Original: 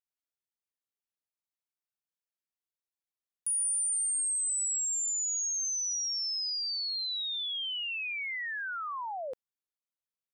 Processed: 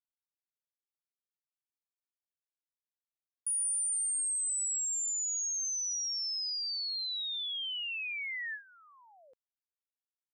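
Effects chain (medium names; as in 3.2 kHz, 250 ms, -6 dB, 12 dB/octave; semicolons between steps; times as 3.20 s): gate with hold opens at -32 dBFS; trim -2 dB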